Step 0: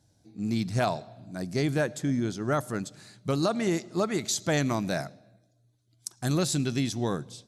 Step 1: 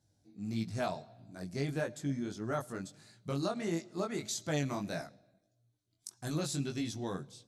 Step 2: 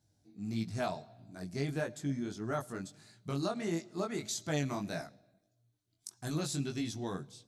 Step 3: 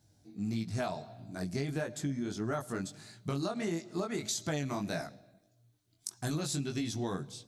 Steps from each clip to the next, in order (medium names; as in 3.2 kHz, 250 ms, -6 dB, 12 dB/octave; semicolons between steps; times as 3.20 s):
chorus 1.6 Hz, delay 18 ms, depth 3.8 ms; trim -5.5 dB
band-stop 530 Hz, Q 12
compression, threshold -38 dBFS, peak gain reduction 9.5 dB; trim +7 dB